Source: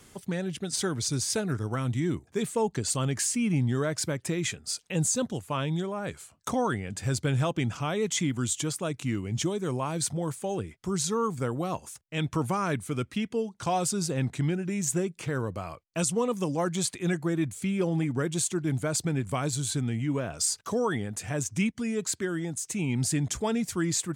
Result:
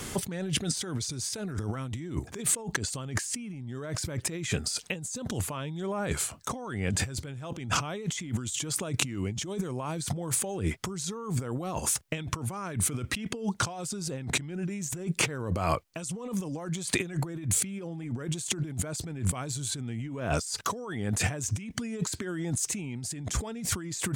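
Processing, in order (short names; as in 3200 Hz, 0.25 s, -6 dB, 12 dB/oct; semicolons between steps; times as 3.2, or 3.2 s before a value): negative-ratio compressor -40 dBFS, ratio -1; gain +6.5 dB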